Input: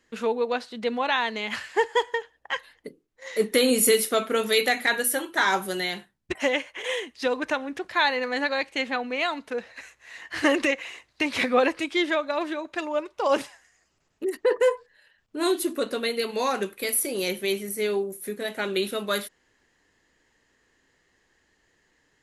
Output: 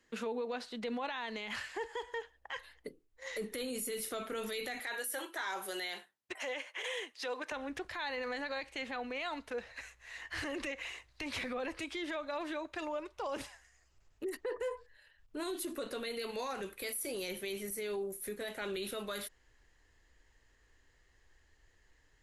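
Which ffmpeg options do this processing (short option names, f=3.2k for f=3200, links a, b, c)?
-filter_complex "[0:a]asettb=1/sr,asplit=3[a][b][c];[a]atrim=end=4.794[d];[b]atrim=start=4.79:end=7.52,asetpts=PTS-STARTPTS,afade=t=in:d=0.004:c=qsin,afade=t=out:st=2.726:d=0.004:c=qsin,highpass=400[e];[c]atrim=start=7.516[f];[d][e]acrossfade=d=0.004:c1=hsin:c2=qsin[g];[g][f]acrossfade=d=0.004:c1=qsin:c2=hsin,acrossover=split=280[h][i];[i]acompressor=threshold=-24dB:ratio=6[j];[h][j]amix=inputs=2:normalize=0,alimiter=level_in=1dB:limit=-24dB:level=0:latency=1:release=39,volume=-1dB,asubboost=boost=8.5:cutoff=67,volume=-4.5dB"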